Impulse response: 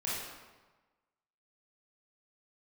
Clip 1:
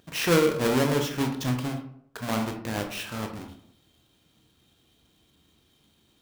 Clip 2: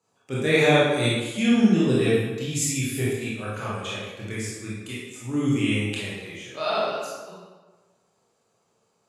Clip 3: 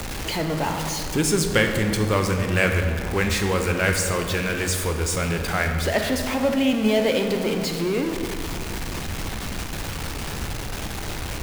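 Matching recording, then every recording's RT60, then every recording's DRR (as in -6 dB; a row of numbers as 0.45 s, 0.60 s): 2; 0.70 s, 1.3 s, 2.5 s; 3.5 dB, -8.0 dB, 4.0 dB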